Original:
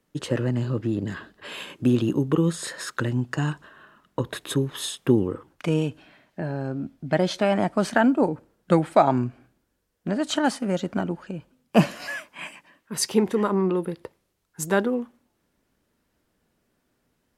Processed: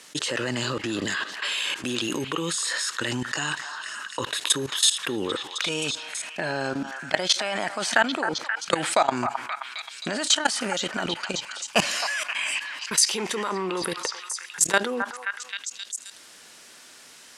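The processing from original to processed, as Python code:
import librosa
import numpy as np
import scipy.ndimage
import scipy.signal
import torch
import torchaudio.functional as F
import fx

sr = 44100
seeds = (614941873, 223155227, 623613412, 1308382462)

p1 = fx.weighting(x, sr, curve='ITU-R 468')
p2 = fx.level_steps(p1, sr, step_db=21)
p3 = p2 + fx.echo_stepped(p2, sr, ms=264, hz=1100.0, octaves=0.7, feedback_pct=70, wet_db=-11.5, dry=0)
p4 = fx.env_flatten(p3, sr, amount_pct=50)
y = p4 * 10.0 ** (3.0 / 20.0)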